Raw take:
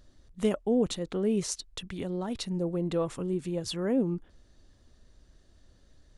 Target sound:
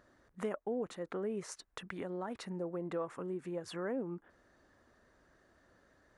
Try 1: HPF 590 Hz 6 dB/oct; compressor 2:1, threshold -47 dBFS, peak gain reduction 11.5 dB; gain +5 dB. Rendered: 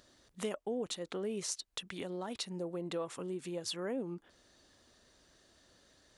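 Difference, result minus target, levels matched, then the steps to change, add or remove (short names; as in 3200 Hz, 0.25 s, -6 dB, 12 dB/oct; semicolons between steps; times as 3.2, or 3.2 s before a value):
4000 Hz band +10.0 dB
add after HPF: resonant high shelf 2400 Hz -12 dB, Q 1.5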